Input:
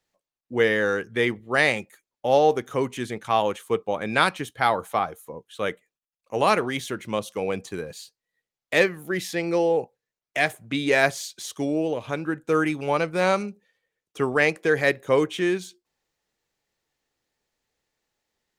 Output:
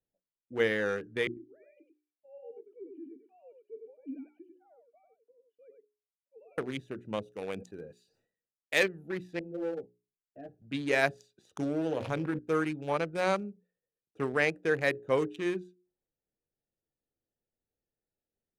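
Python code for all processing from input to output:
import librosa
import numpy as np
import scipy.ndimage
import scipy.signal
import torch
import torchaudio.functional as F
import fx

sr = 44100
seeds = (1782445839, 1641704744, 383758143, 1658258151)

y = fx.chain(x, sr, fx.sine_speech(),
    fx.formant_cascade(vowel='i'),
    fx.echo_single(ms=97, db=-4.5), at=(1.27, 6.58))
y = fx.chain(y, sr, fx.tilt_eq(slope=2.0),
    fx.sustainer(db_per_s=100.0), at=(7.32, 8.83))
y = fx.chain(y, sr, fx.moving_average(points=40),
    fx.ensemble(), at=(9.39, 10.62))
y = fx.chain(y, sr, fx.hum_notches(base_hz=60, count=9),
    fx.env_flatten(amount_pct=70), at=(11.57, 12.39))
y = fx.wiener(y, sr, points=41)
y = fx.hum_notches(y, sr, base_hz=60, count=7)
y = F.gain(torch.from_numpy(y), -6.5).numpy()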